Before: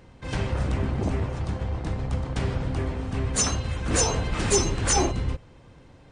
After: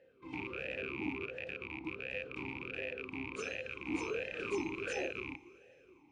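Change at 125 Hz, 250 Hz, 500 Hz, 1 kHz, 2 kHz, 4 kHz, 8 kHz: -27.0, -11.5, -10.0, -16.0, -4.0, -16.5, -29.5 dB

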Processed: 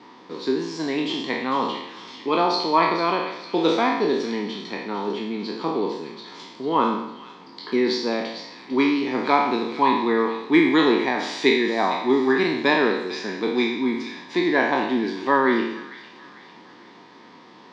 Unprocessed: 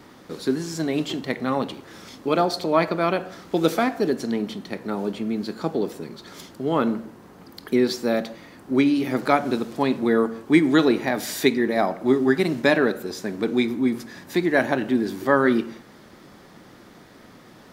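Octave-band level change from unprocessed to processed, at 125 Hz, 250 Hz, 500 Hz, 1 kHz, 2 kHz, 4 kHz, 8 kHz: -6.5 dB, -1.0 dB, 0.0 dB, +5.0 dB, +2.5 dB, +4.5 dB, n/a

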